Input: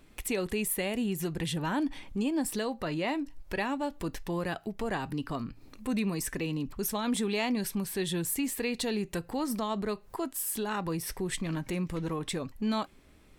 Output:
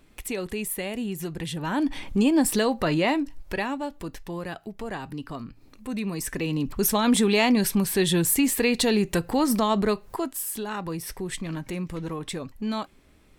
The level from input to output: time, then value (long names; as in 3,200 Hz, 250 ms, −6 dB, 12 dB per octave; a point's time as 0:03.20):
0:01.57 +0.5 dB
0:02.03 +9.5 dB
0:02.94 +9.5 dB
0:04.10 −1 dB
0:05.90 −1 dB
0:06.85 +9.5 dB
0:09.87 +9.5 dB
0:10.54 +1 dB